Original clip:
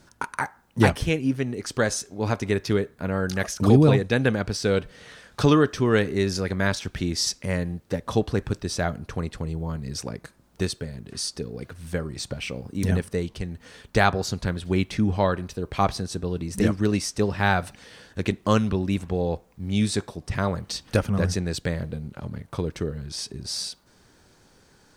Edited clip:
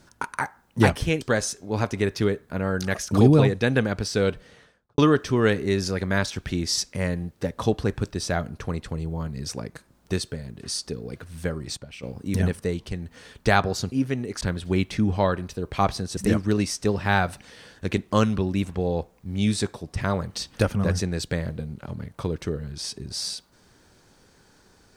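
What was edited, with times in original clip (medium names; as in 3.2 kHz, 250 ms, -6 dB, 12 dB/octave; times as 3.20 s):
1.21–1.70 s: move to 14.41 s
4.76–5.47 s: studio fade out
12.26–12.52 s: gain -9.5 dB
16.17–16.51 s: delete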